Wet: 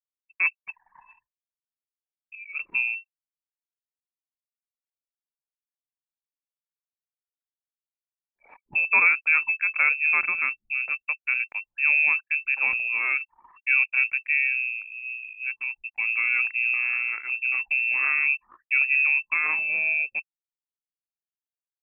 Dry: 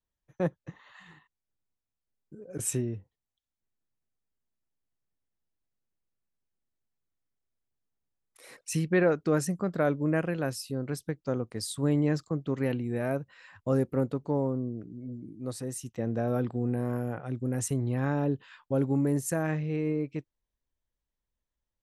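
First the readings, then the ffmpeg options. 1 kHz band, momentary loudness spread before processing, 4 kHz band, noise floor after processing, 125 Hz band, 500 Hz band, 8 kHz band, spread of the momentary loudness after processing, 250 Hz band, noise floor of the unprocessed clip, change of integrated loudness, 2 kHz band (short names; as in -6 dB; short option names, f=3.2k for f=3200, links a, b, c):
+3.0 dB, 12 LU, under -15 dB, under -85 dBFS, under -35 dB, under -20 dB, under -40 dB, 12 LU, under -25 dB, under -85 dBFS, +8.0 dB, +21.0 dB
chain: -af "lowpass=f=2.4k:t=q:w=0.5098,lowpass=f=2.4k:t=q:w=0.6013,lowpass=f=2.4k:t=q:w=0.9,lowpass=f=2.4k:t=q:w=2.563,afreqshift=-2800,anlmdn=0.00631,volume=4.5dB"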